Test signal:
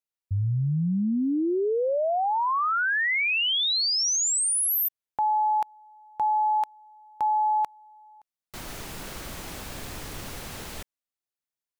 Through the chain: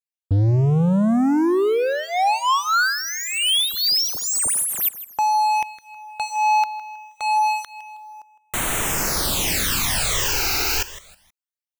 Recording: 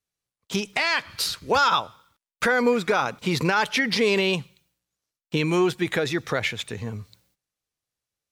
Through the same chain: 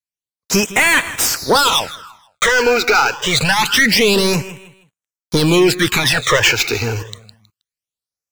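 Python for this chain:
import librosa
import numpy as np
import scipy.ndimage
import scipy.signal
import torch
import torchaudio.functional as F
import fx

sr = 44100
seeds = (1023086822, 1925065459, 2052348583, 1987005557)

y = fx.tilt_shelf(x, sr, db=-5.5, hz=1100.0)
y = fx.leveller(y, sr, passes=5)
y = fx.echo_feedback(y, sr, ms=159, feedback_pct=30, wet_db=-16)
y = fx.phaser_stages(y, sr, stages=12, low_hz=180.0, high_hz=5000.0, hz=0.26, feedback_pct=5)
y = fx.rider(y, sr, range_db=4, speed_s=2.0)
y = y * 10.0 ** (1.0 / 20.0)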